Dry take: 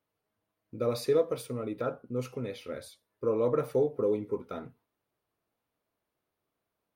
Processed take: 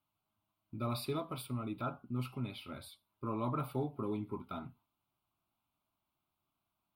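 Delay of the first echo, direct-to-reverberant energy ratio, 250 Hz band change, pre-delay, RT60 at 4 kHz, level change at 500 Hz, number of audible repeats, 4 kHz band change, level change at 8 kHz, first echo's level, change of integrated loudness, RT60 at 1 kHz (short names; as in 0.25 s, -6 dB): none, none, -3.5 dB, none, none, -14.5 dB, none, -2.0 dB, n/a, none, -8.5 dB, none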